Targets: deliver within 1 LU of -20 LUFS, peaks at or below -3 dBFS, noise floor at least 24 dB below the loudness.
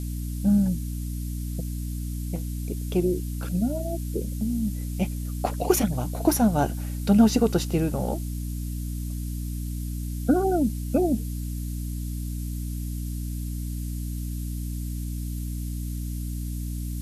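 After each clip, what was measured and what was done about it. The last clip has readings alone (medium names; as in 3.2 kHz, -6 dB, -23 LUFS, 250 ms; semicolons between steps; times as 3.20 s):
hum 60 Hz; highest harmonic 300 Hz; hum level -28 dBFS; noise floor -31 dBFS; noise floor target -52 dBFS; loudness -27.5 LUFS; peak level -7.0 dBFS; loudness target -20.0 LUFS
-> de-hum 60 Hz, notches 5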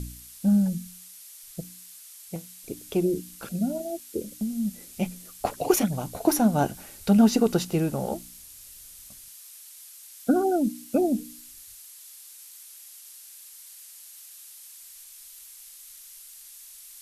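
hum not found; noise floor -47 dBFS; noise floor target -50 dBFS
-> noise reduction 6 dB, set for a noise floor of -47 dBFS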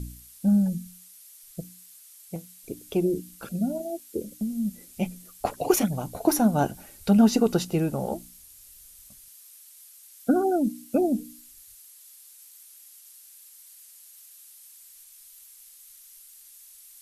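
noise floor -51 dBFS; loudness -26.0 LUFS; peak level -7.0 dBFS; loudness target -20.0 LUFS
-> trim +6 dB; peak limiter -3 dBFS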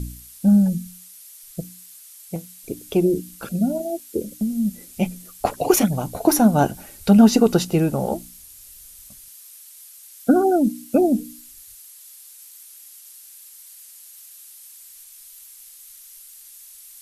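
loudness -20.0 LUFS; peak level -3.0 dBFS; noise floor -45 dBFS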